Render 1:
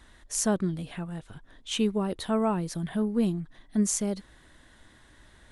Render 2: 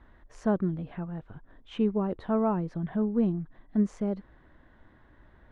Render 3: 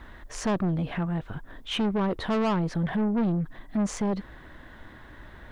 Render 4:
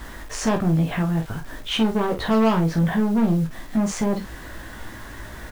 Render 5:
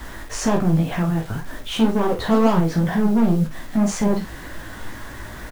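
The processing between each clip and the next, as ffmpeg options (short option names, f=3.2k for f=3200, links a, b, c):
-af "lowpass=1.4k"
-filter_complex "[0:a]highshelf=f=2k:g=10.5,asplit=2[a][b];[b]alimiter=level_in=2.5dB:limit=-24dB:level=0:latency=1:release=73,volume=-2.5dB,volume=-3dB[c];[a][c]amix=inputs=2:normalize=0,asoftclip=type=tanh:threshold=-27dB,volume=5dB"
-filter_complex "[0:a]asplit=2[a][b];[b]acompressor=threshold=-37dB:ratio=5,volume=0.5dB[c];[a][c]amix=inputs=2:normalize=0,acrusher=bits=7:mix=0:aa=0.000001,aecho=1:1:18|49:0.562|0.376,volume=1.5dB"
-filter_complex "[0:a]acrossover=split=320|1200|4600[a][b][c][d];[c]asoftclip=type=tanh:threshold=-33dB[e];[a][b][e][d]amix=inputs=4:normalize=0,flanger=delay=2.8:depth=9.3:regen=71:speed=2:shape=triangular,asplit=2[f][g];[g]adelay=39,volume=-13dB[h];[f][h]amix=inputs=2:normalize=0,volume=6.5dB"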